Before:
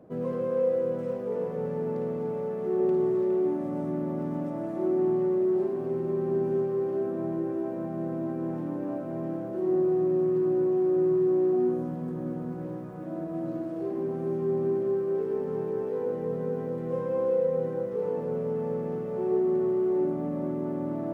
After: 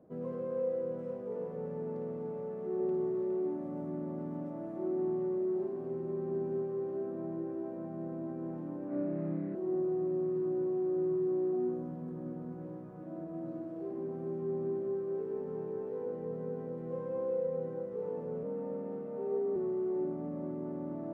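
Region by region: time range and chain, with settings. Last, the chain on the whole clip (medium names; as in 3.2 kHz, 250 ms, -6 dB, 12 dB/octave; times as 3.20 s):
8.88–9.55 s: median filter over 41 samples + band-pass 100–2000 Hz + flutter echo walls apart 5.3 m, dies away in 0.99 s
18.43–19.56 s: high-pass 49 Hz + frequency shift +31 Hz + decimation joined by straight lines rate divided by 4×
whole clip: treble shelf 2.1 kHz -9 dB; hum notches 60/120 Hz; trim -7.5 dB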